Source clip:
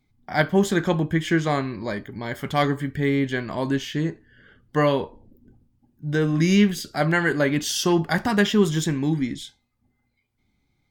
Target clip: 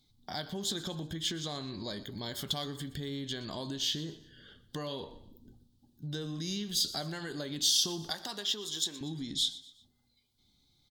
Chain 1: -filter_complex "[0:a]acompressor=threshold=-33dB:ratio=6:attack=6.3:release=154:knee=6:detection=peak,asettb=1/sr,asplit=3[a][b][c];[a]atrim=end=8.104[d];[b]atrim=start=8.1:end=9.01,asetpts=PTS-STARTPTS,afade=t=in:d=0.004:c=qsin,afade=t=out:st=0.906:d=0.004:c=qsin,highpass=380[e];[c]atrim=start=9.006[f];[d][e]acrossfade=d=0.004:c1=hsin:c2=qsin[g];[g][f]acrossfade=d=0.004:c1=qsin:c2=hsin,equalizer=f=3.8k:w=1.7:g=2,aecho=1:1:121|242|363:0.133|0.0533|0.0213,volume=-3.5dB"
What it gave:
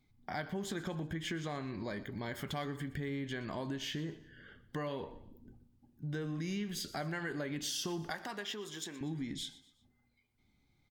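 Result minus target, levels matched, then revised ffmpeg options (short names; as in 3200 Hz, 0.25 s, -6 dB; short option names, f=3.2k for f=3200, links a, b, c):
4000 Hz band -6.0 dB
-filter_complex "[0:a]acompressor=threshold=-33dB:ratio=6:attack=6.3:release=154:knee=6:detection=peak,highshelf=f=2.9k:t=q:w=3:g=8.5,asettb=1/sr,asplit=3[a][b][c];[a]atrim=end=8.104[d];[b]atrim=start=8.1:end=9.01,asetpts=PTS-STARTPTS,afade=t=in:d=0.004:c=qsin,afade=t=out:st=0.906:d=0.004:c=qsin,highpass=380[e];[c]atrim=start=9.006[f];[d][e]acrossfade=d=0.004:c1=hsin:c2=qsin[g];[g][f]acrossfade=d=0.004:c1=qsin:c2=hsin,equalizer=f=3.8k:w=1.7:g=2,aecho=1:1:121|242|363:0.133|0.0533|0.0213,volume=-3.5dB"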